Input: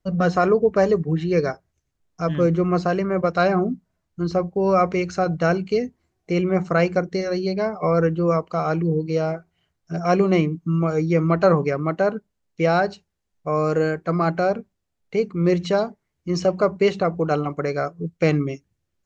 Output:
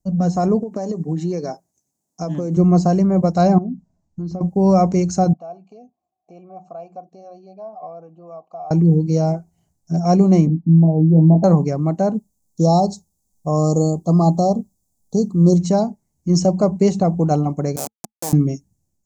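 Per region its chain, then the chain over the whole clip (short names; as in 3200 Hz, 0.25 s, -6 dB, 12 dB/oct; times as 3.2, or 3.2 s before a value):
0.6–2.57 HPF 250 Hz + compressor 10:1, threshold -23 dBFS
3.58–4.41 notches 50/100/150 Hz + compressor 3:1, threshold -34 dBFS + air absorption 120 m
5.33–8.71 notch 2100 Hz, Q 11 + compressor 2:1, threshold -30 dBFS + vowel filter a
10.47–11.44 rippled Chebyshev low-pass 940 Hz, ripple 3 dB + doubler 19 ms -4.5 dB
12.14–15.57 brick-wall FIR band-stop 1300–3200 Hz + high shelf 6000 Hz +8 dB
17.76–18.33 Schmitt trigger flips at -19.5 dBFS + Bessel high-pass 550 Hz
whole clip: EQ curve 100 Hz 0 dB, 220 Hz +5 dB, 450 Hz -8 dB, 830 Hz 0 dB, 1300 Hz -17 dB, 3200 Hz -15 dB, 6800 Hz +12 dB; AGC gain up to 7 dB; high shelf 5700 Hz -8.5 dB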